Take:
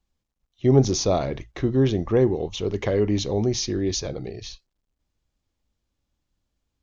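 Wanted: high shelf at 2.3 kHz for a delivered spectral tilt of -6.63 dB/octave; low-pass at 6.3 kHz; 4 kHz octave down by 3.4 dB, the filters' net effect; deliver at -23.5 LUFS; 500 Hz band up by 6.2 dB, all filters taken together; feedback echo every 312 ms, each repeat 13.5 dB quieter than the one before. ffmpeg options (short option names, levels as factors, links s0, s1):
-af "lowpass=6300,equalizer=f=500:t=o:g=8,highshelf=f=2300:g=4,equalizer=f=4000:t=o:g=-7.5,aecho=1:1:312|624:0.211|0.0444,volume=0.596"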